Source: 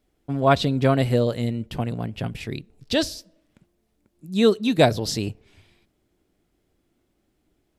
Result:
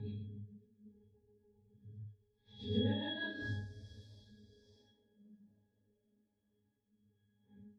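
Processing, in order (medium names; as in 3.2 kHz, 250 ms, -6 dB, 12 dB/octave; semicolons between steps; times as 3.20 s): Paulstretch 7.6×, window 0.05 s, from 2.57 s; rotary cabinet horn 7.5 Hz, later 1.2 Hz, at 2.82 s; pitch-class resonator G#, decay 0.39 s; trim +7 dB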